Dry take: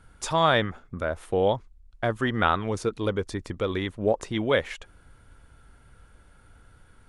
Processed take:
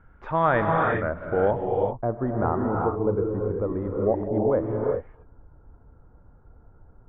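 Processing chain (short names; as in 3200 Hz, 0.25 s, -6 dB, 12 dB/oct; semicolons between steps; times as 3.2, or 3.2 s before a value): LPF 1900 Hz 24 dB/oct, from 1.51 s 1000 Hz; non-linear reverb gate 0.42 s rising, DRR 0 dB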